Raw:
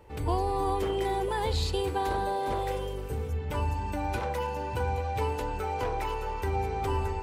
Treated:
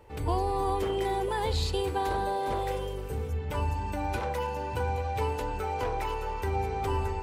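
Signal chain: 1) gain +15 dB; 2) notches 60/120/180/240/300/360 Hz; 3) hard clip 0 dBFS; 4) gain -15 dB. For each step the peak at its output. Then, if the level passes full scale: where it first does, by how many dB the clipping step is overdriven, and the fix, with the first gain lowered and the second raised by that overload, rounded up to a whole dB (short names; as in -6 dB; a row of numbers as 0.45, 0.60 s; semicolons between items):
-2.0, -2.0, -2.0, -17.0 dBFS; no overload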